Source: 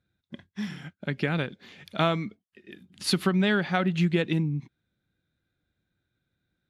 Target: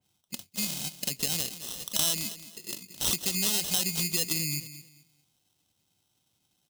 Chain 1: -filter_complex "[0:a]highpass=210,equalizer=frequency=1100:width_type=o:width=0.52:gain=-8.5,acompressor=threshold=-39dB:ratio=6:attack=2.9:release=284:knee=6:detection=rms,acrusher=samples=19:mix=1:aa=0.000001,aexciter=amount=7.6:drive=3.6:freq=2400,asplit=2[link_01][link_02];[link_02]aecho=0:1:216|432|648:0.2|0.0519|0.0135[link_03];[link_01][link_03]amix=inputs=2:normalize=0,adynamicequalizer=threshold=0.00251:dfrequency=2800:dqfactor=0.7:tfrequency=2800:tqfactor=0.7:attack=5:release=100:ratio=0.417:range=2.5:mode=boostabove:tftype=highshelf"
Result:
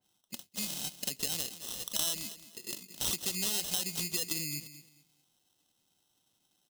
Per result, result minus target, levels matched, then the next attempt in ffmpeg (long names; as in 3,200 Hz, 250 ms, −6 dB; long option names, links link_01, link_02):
downward compressor: peak gain reduction +5 dB; 125 Hz band −3.0 dB
-filter_complex "[0:a]highpass=210,equalizer=frequency=1100:width_type=o:width=0.52:gain=-8.5,acompressor=threshold=-32.5dB:ratio=6:attack=2.9:release=284:knee=6:detection=rms,acrusher=samples=19:mix=1:aa=0.000001,aexciter=amount=7.6:drive=3.6:freq=2400,asplit=2[link_01][link_02];[link_02]aecho=0:1:216|432|648:0.2|0.0519|0.0135[link_03];[link_01][link_03]amix=inputs=2:normalize=0,adynamicequalizer=threshold=0.00251:dfrequency=2800:dqfactor=0.7:tfrequency=2800:tqfactor=0.7:attack=5:release=100:ratio=0.417:range=2.5:mode=boostabove:tftype=highshelf"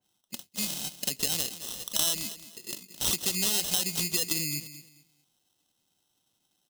125 Hz band −3.0 dB
-filter_complex "[0:a]highpass=91,equalizer=frequency=1100:width_type=o:width=0.52:gain=-8.5,acompressor=threshold=-32.5dB:ratio=6:attack=2.9:release=284:knee=6:detection=rms,acrusher=samples=19:mix=1:aa=0.000001,aexciter=amount=7.6:drive=3.6:freq=2400,asplit=2[link_01][link_02];[link_02]aecho=0:1:216|432|648:0.2|0.0519|0.0135[link_03];[link_01][link_03]amix=inputs=2:normalize=0,adynamicequalizer=threshold=0.00251:dfrequency=2800:dqfactor=0.7:tfrequency=2800:tqfactor=0.7:attack=5:release=100:ratio=0.417:range=2.5:mode=boostabove:tftype=highshelf"